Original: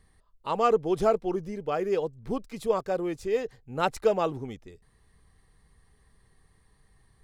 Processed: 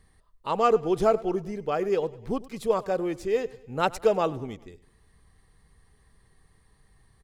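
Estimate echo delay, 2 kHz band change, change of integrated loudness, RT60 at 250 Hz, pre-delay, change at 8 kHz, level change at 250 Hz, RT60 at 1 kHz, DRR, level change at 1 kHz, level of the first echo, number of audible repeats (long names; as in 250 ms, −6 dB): 100 ms, +1.5 dB, +1.5 dB, no reverb audible, no reverb audible, +1.5 dB, +1.5 dB, no reverb audible, no reverb audible, +1.5 dB, −20.0 dB, 3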